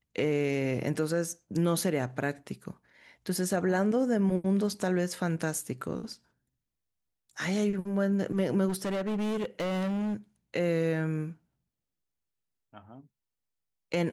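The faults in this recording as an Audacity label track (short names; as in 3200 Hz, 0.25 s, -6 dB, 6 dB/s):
8.680000	10.150000	clipped -28 dBFS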